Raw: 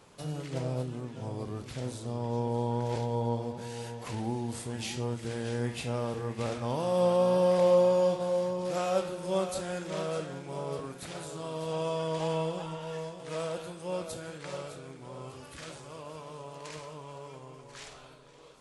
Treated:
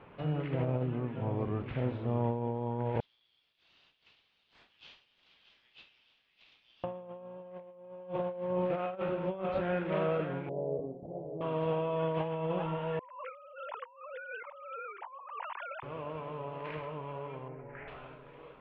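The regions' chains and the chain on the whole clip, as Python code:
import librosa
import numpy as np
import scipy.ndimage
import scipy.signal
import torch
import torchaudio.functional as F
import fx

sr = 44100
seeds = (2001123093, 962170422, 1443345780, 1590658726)

y = fx.chain(x, sr, fx.cheby2_highpass(hz=960.0, order=4, stop_db=70),
    fx.high_shelf(hz=6200.0, db=9.5),
    fx.mod_noise(seeds[0], snr_db=21), at=(3.0, 6.84))
y = fx.chain(y, sr, fx.steep_lowpass(hz=720.0, slope=48),
    fx.low_shelf(hz=210.0, db=-8.5), at=(10.49, 11.41))
y = fx.chain(y, sr, fx.sine_speech(),
    fx.highpass_res(hz=980.0, q=6.3),
    fx.over_compress(threshold_db=-50.0, ratio=-1.0), at=(12.99, 15.83))
y = fx.chain(y, sr, fx.steep_lowpass(hz=2200.0, slope=36),
    fx.peak_eq(hz=1100.0, db=-11.5, octaves=0.24), at=(17.48, 17.88))
y = scipy.signal.sosfilt(scipy.signal.butter(6, 2800.0, 'lowpass', fs=sr, output='sos'), y)
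y = fx.over_compress(y, sr, threshold_db=-33.0, ratio=-0.5)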